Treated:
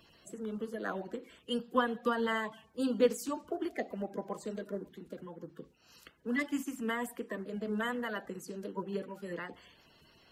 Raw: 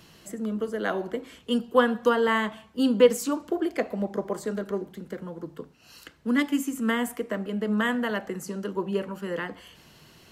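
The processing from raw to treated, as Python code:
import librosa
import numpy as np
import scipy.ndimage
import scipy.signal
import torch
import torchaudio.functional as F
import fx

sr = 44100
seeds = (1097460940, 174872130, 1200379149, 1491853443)

y = fx.spec_quant(x, sr, step_db=30)
y = y * librosa.db_to_amplitude(-8.5)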